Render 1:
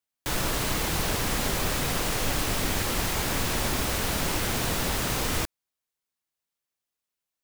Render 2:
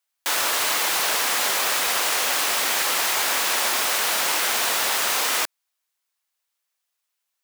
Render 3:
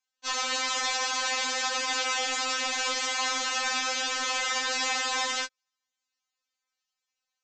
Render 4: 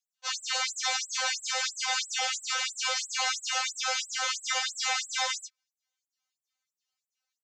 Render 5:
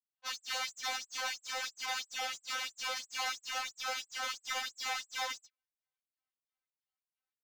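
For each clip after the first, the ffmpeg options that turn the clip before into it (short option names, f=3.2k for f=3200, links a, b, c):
-af "highpass=750,volume=8dB"
-af "aresample=16000,asoftclip=type=tanh:threshold=-21dB,aresample=44100,afftfilt=real='re*3.46*eq(mod(b,12),0)':imag='im*3.46*eq(mod(b,12),0)':win_size=2048:overlap=0.75"
-filter_complex "[0:a]aeval=exprs='0.141*(cos(1*acos(clip(val(0)/0.141,-1,1)))-cos(1*PI/2))+0.00282*(cos(3*acos(clip(val(0)/0.141,-1,1)))-cos(3*PI/2))':c=same,asplit=2[a][b];[b]adelay=13,volume=-8dB[c];[a][c]amix=inputs=2:normalize=0,afftfilt=real='re*gte(b*sr/1024,420*pow(7600/420,0.5+0.5*sin(2*PI*3*pts/sr)))':imag='im*gte(b*sr/1024,420*pow(7600/420,0.5+0.5*sin(2*PI*3*pts/sr)))':win_size=1024:overlap=0.75"
-af "adynamicsmooth=sensitivity=7.5:basefreq=2.6k,adynamicequalizer=threshold=0.00891:dfrequency=1900:dqfactor=0.7:tfrequency=1900:tqfactor=0.7:attack=5:release=100:ratio=0.375:range=2:mode=cutabove:tftype=highshelf,volume=-5.5dB"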